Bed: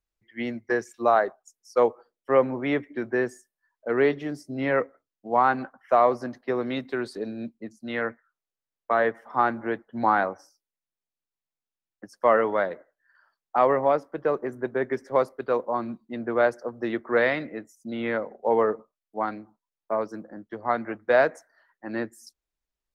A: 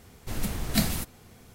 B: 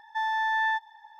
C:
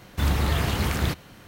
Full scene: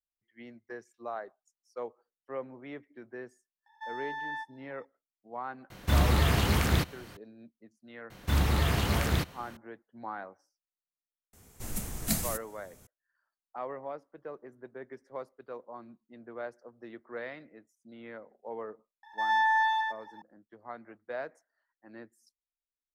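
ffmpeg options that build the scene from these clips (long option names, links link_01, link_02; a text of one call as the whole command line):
ffmpeg -i bed.wav -i cue0.wav -i cue1.wav -i cue2.wav -filter_complex "[2:a]asplit=2[link_01][link_02];[3:a]asplit=2[link_03][link_04];[0:a]volume=-18dB[link_05];[1:a]highshelf=frequency=5500:width_type=q:width=1.5:gain=6.5[link_06];[link_02]aecho=1:1:108:0.631[link_07];[link_01]atrim=end=1.19,asetpts=PTS-STARTPTS,volume=-11.5dB,afade=type=in:duration=0.004:curve=hsin,afade=type=out:start_time=1.186:duration=0.004:curve=hsin,adelay=3660[link_08];[link_03]atrim=end=1.47,asetpts=PTS-STARTPTS,volume=-1dB,afade=type=in:duration=0.004:curve=hsin,afade=type=out:start_time=1.466:duration=0.004:curve=hsin,adelay=5700[link_09];[link_04]atrim=end=1.47,asetpts=PTS-STARTPTS,volume=-3dB,afade=type=in:duration=0.004:curve=hsin,afade=type=out:start_time=1.466:duration=0.004:curve=hsin,adelay=357210S[link_10];[link_06]atrim=end=1.54,asetpts=PTS-STARTPTS,volume=-7dB,afade=type=in:duration=0.004:curve=hsin,afade=type=out:start_time=1.536:duration=0.004:curve=hsin,adelay=11330[link_11];[link_07]atrim=end=1.19,asetpts=PTS-STARTPTS,volume=-1.5dB,afade=type=in:duration=0.004:curve=hsin,afade=type=out:start_time=1.186:duration=0.004:curve=hsin,adelay=19030[link_12];[link_05][link_08][link_09][link_10][link_11][link_12]amix=inputs=6:normalize=0" out.wav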